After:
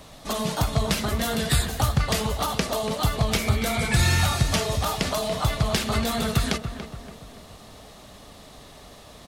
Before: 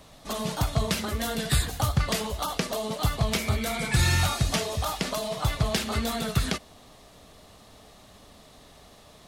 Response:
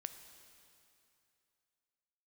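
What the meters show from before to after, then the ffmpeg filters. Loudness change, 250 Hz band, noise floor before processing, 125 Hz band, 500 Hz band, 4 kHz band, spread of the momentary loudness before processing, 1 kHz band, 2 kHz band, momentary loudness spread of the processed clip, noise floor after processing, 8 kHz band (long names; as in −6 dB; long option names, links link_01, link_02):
+3.0 dB, +3.5 dB, −53 dBFS, +3.0 dB, +3.5 dB, +3.0 dB, 6 LU, +3.5 dB, +3.0 dB, 10 LU, −47 dBFS, +2.5 dB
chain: -filter_complex "[0:a]asplit=2[link_01][link_02];[link_02]acompressor=threshold=-31dB:ratio=6,volume=-1.5dB[link_03];[link_01][link_03]amix=inputs=2:normalize=0,asplit=2[link_04][link_05];[link_05]adelay=285,lowpass=frequency=2100:poles=1,volume=-9dB,asplit=2[link_06][link_07];[link_07]adelay=285,lowpass=frequency=2100:poles=1,volume=0.46,asplit=2[link_08][link_09];[link_09]adelay=285,lowpass=frequency=2100:poles=1,volume=0.46,asplit=2[link_10][link_11];[link_11]adelay=285,lowpass=frequency=2100:poles=1,volume=0.46,asplit=2[link_12][link_13];[link_13]adelay=285,lowpass=frequency=2100:poles=1,volume=0.46[link_14];[link_04][link_06][link_08][link_10][link_12][link_14]amix=inputs=6:normalize=0"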